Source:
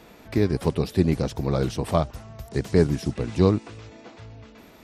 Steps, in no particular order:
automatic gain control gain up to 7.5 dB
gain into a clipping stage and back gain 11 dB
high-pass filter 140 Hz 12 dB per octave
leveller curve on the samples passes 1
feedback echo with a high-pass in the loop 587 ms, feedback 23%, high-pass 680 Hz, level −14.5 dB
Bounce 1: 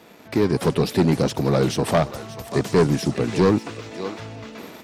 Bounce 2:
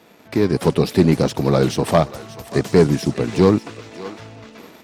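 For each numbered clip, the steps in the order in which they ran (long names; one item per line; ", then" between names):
feedback echo with a high-pass in the loop, then automatic gain control, then high-pass filter, then gain into a clipping stage and back, then leveller curve on the samples
gain into a clipping stage and back, then high-pass filter, then leveller curve on the samples, then feedback echo with a high-pass in the loop, then automatic gain control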